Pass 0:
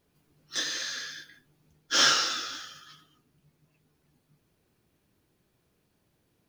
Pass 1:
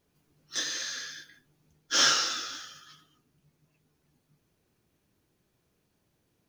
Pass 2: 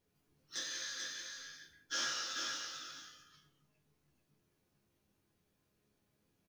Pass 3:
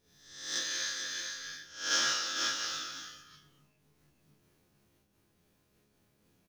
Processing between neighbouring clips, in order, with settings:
parametric band 6,200 Hz +3.5 dB 0.37 octaves; level −2 dB
downward compressor 2.5 to 1, threshold −32 dBFS, peak gain reduction 9 dB; resonators tuned to a chord C#2 major, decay 0.3 s; single-tap delay 438 ms −5 dB; level +4.5 dB
peak hold with a rise ahead of every peak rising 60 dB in 0.69 s; amplitude modulation by smooth noise, depth 60%; level +8 dB

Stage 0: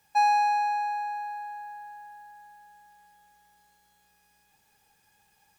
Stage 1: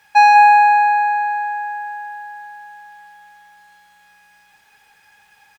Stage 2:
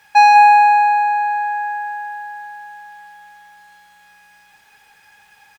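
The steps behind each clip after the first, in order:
parametric band 1,800 Hz +14.5 dB 2.7 octaves; on a send: single-tap delay 194 ms −8.5 dB; on the sum: level +3 dB
dynamic equaliser 1,400 Hz, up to −6 dB, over −25 dBFS, Q 1.4; level +2.5 dB

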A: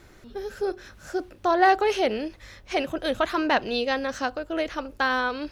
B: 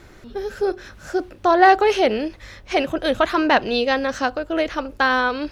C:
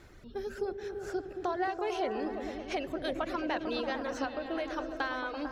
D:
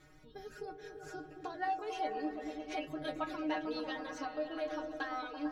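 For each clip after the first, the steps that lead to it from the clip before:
high-shelf EQ 6,600 Hz −5 dB; level +6 dB
downward compressor 4 to 1, threshold −22 dBFS, peak gain reduction 12 dB; reverb reduction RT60 1 s; echo whose low-pass opens from repeat to repeat 112 ms, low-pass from 200 Hz, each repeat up 1 octave, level 0 dB; level −9 dB
stiff-string resonator 150 Hz, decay 0.2 s, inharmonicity 0.002; level +4.5 dB

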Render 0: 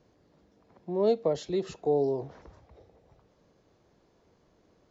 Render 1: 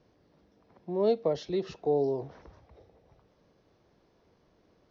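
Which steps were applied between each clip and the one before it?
elliptic low-pass filter 5,900 Hz, stop band 40 dB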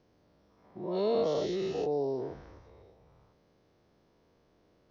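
every bin's largest magnitude spread in time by 240 ms
level −7 dB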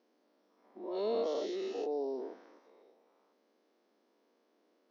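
linear-phase brick-wall high-pass 210 Hz
level −4.5 dB

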